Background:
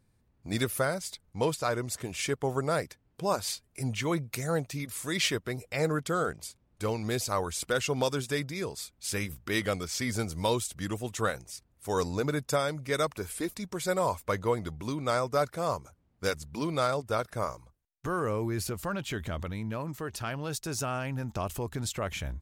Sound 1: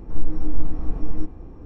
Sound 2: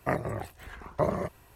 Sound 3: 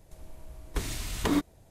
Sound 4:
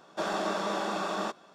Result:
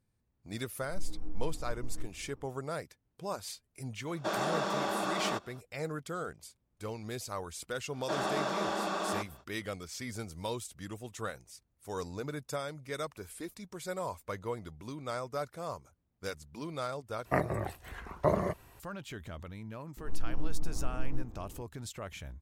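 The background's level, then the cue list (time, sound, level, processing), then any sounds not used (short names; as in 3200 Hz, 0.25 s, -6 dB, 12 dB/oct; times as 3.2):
background -9 dB
0.81 add 1 -16 dB
4.07 add 4 -1.5 dB
7.91 add 4 -2 dB, fades 0.05 s
17.25 replace with 2 -0.5 dB
19.97 add 1 -8.5 dB + limiter -11 dBFS
not used: 3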